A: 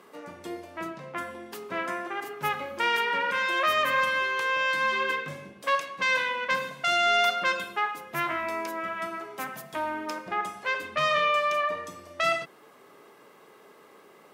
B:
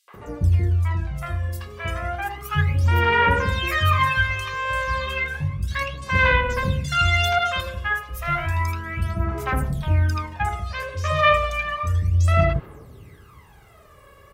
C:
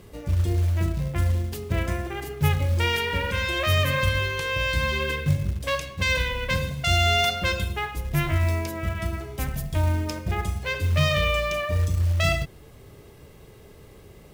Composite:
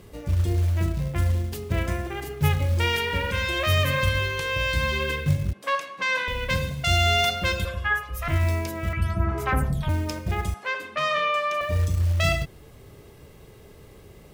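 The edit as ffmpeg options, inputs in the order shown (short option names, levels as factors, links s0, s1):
-filter_complex "[0:a]asplit=2[s0][s1];[1:a]asplit=2[s2][s3];[2:a]asplit=5[s4][s5][s6][s7][s8];[s4]atrim=end=5.532[s9];[s0]atrim=start=5.528:end=6.282[s10];[s5]atrim=start=6.278:end=7.652[s11];[s2]atrim=start=7.648:end=8.282[s12];[s6]atrim=start=8.278:end=8.932[s13];[s3]atrim=start=8.928:end=9.892[s14];[s7]atrim=start=9.888:end=10.542[s15];[s1]atrim=start=10.538:end=11.612[s16];[s8]atrim=start=11.608[s17];[s9][s10]acrossfade=d=0.004:c1=hsin:c2=hsin[s18];[s18][s11]acrossfade=d=0.004:c1=hsin:c2=hsin[s19];[s19][s12]acrossfade=d=0.004:c1=hsin:c2=hsin[s20];[s20][s13]acrossfade=d=0.004:c1=hsin:c2=hsin[s21];[s21][s14]acrossfade=d=0.004:c1=hsin:c2=hsin[s22];[s22][s15]acrossfade=d=0.004:c1=hsin:c2=hsin[s23];[s23][s16]acrossfade=d=0.004:c1=hsin:c2=hsin[s24];[s24][s17]acrossfade=d=0.004:c1=hsin:c2=hsin"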